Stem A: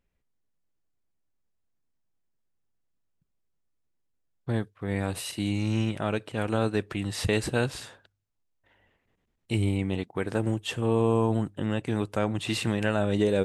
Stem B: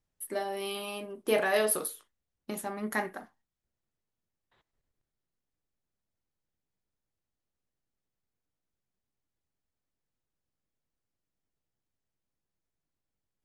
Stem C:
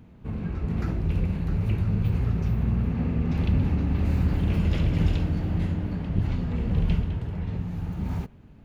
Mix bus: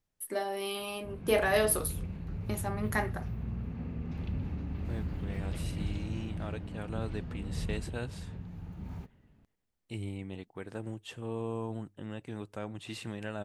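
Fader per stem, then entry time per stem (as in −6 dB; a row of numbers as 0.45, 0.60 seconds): −12.5, 0.0, −12.5 decibels; 0.40, 0.00, 0.80 seconds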